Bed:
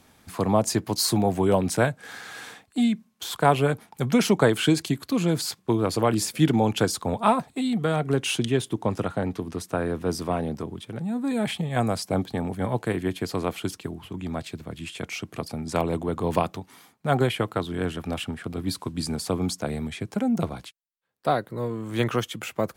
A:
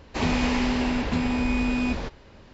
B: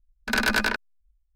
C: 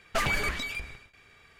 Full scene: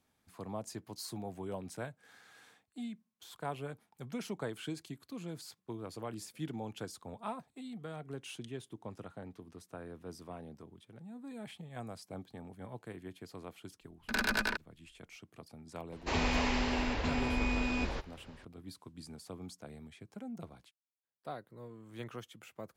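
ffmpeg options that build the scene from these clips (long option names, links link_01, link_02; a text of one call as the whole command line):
ffmpeg -i bed.wav -i cue0.wav -i cue1.wav -filter_complex "[0:a]volume=-20dB[link_01];[1:a]equalizer=frequency=190:width=1.1:gain=-7.5[link_02];[2:a]atrim=end=1.35,asetpts=PTS-STARTPTS,volume=-9dB,afade=type=in:duration=0.004:curve=hsin,afade=type=out:start_time=1.346:duration=0.004:curve=hsin,adelay=13810[link_03];[link_02]atrim=end=2.53,asetpts=PTS-STARTPTS,volume=-5dB,afade=type=in:duration=0.004:curve=hsin,afade=type=out:start_time=2.526:duration=0.004:curve=hsin,adelay=15920[link_04];[link_01][link_03][link_04]amix=inputs=3:normalize=0" out.wav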